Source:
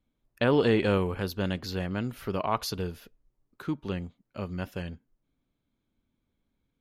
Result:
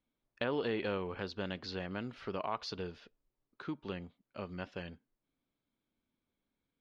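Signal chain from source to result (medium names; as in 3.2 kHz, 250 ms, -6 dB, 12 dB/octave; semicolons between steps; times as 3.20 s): low-pass 5.1 kHz 24 dB/octave; bass shelf 170 Hz -11.5 dB; compression 2:1, threshold -32 dBFS, peak gain reduction 6.5 dB; trim -3.5 dB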